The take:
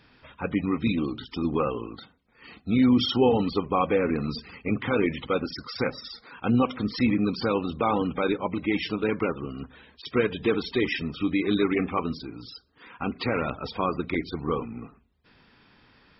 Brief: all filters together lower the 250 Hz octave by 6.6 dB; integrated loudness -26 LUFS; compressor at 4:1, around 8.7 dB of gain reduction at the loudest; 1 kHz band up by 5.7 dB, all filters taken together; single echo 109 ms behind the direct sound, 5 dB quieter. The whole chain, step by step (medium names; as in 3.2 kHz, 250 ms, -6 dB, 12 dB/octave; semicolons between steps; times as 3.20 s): peaking EQ 250 Hz -8.5 dB; peaking EQ 1 kHz +7.5 dB; compression 4:1, threshold -25 dBFS; delay 109 ms -5 dB; trim +4 dB